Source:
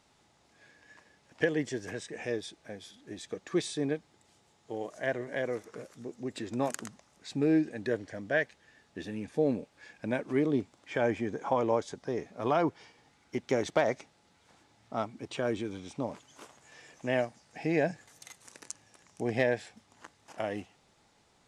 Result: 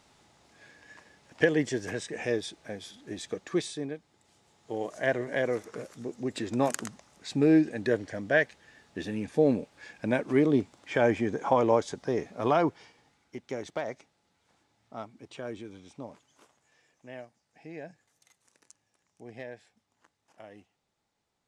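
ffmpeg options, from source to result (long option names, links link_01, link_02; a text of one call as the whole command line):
ffmpeg -i in.wav -af "volume=15dB,afade=type=out:start_time=3.25:duration=0.67:silence=0.298538,afade=type=in:start_time=3.92:duration=1:silence=0.298538,afade=type=out:start_time=12.32:duration=1.04:silence=0.266073,afade=type=out:start_time=15.95:duration=0.95:silence=0.421697" out.wav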